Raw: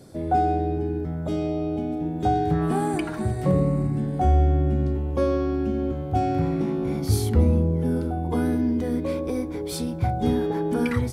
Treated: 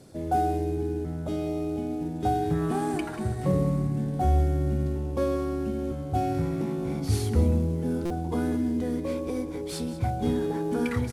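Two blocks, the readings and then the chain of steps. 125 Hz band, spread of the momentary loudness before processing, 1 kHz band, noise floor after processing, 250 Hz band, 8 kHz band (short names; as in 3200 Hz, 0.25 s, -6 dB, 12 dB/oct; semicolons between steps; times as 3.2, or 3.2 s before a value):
-3.5 dB, 7 LU, -4.0 dB, -34 dBFS, -3.5 dB, -3.0 dB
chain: CVSD 64 kbps; on a send: echo 0.186 s -14 dB; on the sum: stuck buffer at 8.05, samples 256, times 8; gain -3.5 dB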